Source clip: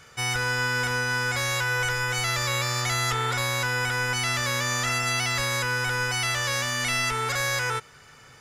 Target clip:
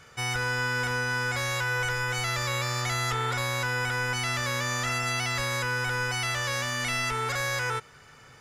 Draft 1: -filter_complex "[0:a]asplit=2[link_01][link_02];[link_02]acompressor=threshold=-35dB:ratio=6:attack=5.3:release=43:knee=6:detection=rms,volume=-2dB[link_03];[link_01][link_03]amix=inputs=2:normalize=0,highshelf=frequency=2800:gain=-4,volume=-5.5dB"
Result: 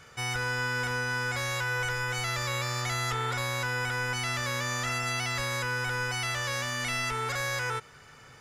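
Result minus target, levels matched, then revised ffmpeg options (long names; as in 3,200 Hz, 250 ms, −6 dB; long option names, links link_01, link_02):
downward compressor: peak gain reduction +8.5 dB
-filter_complex "[0:a]asplit=2[link_01][link_02];[link_02]acompressor=threshold=-24.5dB:ratio=6:attack=5.3:release=43:knee=6:detection=rms,volume=-2dB[link_03];[link_01][link_03]amix=inputs=2:normalize=0,highshelf=frequency=2800:gain=-4,volume=-5.5dB"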